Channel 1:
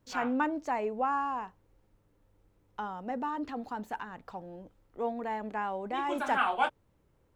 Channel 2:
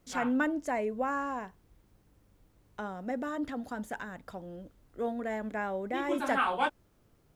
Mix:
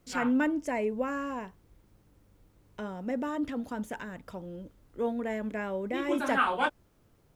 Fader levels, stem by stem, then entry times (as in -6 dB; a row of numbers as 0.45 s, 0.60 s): -6.0 dB, +1.0 dB; 0.00 s, 0.00 s